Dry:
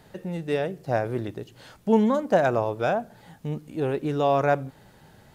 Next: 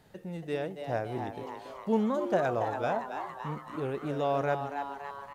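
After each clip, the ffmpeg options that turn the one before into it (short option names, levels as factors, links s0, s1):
-filter_complex "[0:a]asplit=9[s0][s1][s2][s3][s4][s5][s6][s7][s8];[s1]adelay=281,afreqshift=140,volume=0.398[s9];[s2]adelay=562,afreqshift=280,volume=0.245[s10];[s3]adelay=843,afreqshift=420,volume=0.153[s11];[s4]adelay=1124,afreqshift=560,volume=0.0944[s12];[s5]adelay=1405,afreqshift=700,volume=0.0589[s13];[s6]adelay=1686,afreqshift=840,volume=0.0363[s14];[s7]adelay=1967,afreqshift=980,volume=0.0226[s15];[s8]adelay=2248,afreqshift=1120,volume=0.014[s16];[s0][s9][s10][s11][s12][s13][s14][s15][s16]amix=inputs=9:normalize=0,volume=0.422"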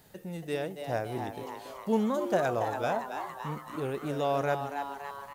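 -af "aemphasis=mode=production:type=50kf"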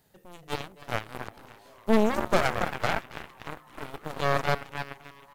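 -af "aeval=exprs='clip(val(0),-1,0.0126)':c=same,aeval=exprs='0.15*(cos(1*acos(clip(val(0)/0.15,-1,1)))-cos(1*PI/2))+0.00335*(cos(3*acos(clip(val(0)/0.15,-1,1)))-cos(3*PI/2))+0.0237*(cos(7*acos(clip(val(0)/0.15,-1,1)))-cos(7*PI/2))+0.00335*(cos(8*acos(clip(val(0)/0.15,-1,1)))-cos(8*PI/2))':c=same,volume=2.51"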